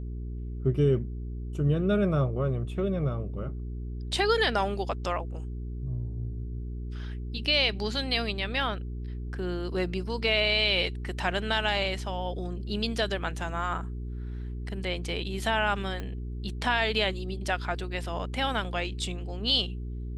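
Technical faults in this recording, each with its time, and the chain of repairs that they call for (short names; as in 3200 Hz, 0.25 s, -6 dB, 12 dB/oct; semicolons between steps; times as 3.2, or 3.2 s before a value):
hum 60 Hz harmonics 7 -35 dBFS
16 pop -22 dBFS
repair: de-click; de-hum 60 Hz, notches 7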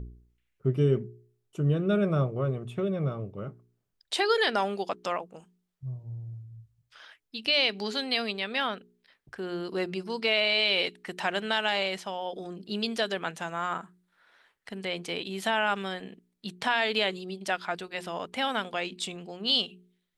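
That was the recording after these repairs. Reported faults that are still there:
16 pop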